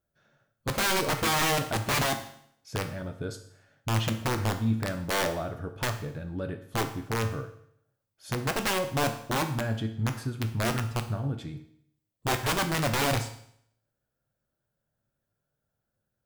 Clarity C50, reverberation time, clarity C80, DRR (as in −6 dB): 10.5 dB, 0.65 s, 13.5 dB, 6.0 dB